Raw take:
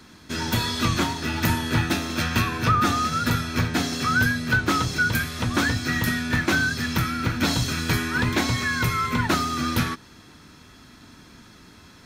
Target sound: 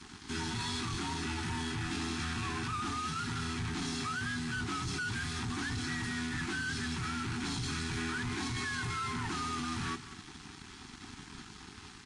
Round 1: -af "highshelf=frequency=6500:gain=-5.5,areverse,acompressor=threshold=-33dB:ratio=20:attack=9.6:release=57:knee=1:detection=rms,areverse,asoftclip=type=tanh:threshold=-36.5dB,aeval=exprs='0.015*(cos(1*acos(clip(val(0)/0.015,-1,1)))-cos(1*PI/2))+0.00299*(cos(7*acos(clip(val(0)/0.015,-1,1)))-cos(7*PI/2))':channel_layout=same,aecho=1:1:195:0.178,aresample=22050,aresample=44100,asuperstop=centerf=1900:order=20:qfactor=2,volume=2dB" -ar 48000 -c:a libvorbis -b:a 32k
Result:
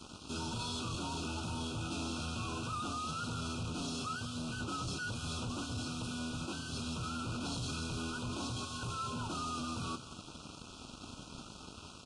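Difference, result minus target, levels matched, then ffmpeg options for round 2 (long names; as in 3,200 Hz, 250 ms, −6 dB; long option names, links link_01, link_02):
downward compressor: peak gain reduction +6.5 dB; 2,000 Hz band −5.0 dB
-af "highshelf=frequency=6500:gain=-5.5,areverse,acompressor=threshold=-26dB:ratio=20:attack=9.6:release=57:knee=1:detection=rms,areverse,asoftclip=type=tanh:threshold=-36.5dB,aeval=exprs='0.015*(cos(1*acos(clip(val(0)/0.015,-1,1)))-cos(1*PI/2))+0.00299*(cos(7*acos(clip(val(0)/0.015,-1,1)))-cos(7*PI/2))':channel_layout=same,aecho=1:1:195:0.178,aresample=22050,aresample=44100,asuperstop=centerf=560:order=20:qfactor=2,volume=2dB" -ar 48000 -c:a libvorbis -b:a 32k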